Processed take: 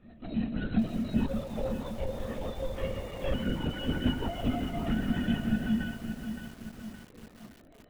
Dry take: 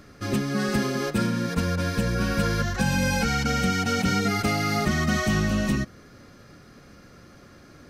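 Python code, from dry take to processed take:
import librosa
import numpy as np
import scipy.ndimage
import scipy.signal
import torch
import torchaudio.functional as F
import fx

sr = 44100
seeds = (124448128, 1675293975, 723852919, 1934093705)

y = scipy.signal.sosfilt(scipy.signal.butter(2, 120.0, 'highpass', fs=sr, output='sos'), x)
y = fx.high_shelf(y, sr, hz=2800.0, db=3.5)
y = fx.stiff_resonator(y, sr, f0_hz=220.0, decay_s=0.69, stiffness=0.008)
y = fx.small_body(y, sr, hz=(300.0, 560.0, 2700.0), ring_ms=25, db=13)
y = fx.rotary(y, sr, hz=6.3)
y = fx.ring_mod(y, sr, carrier_hz=310.0, at=(1.27, 3.34))
y = fx.echo_feedback(y, sr, ms=373, feedback_pct=43, wet_db=-20.0)
y = fx.lpc_vocoder(y, sr, seeds[0], excitation='whisper', order=16)
y = fx.echo_crushed(y, sr, ms=568, feedback_pct=55, bits=9, wet_db=-8.0)
y = y * librosa.db_to_amplitude(7.5)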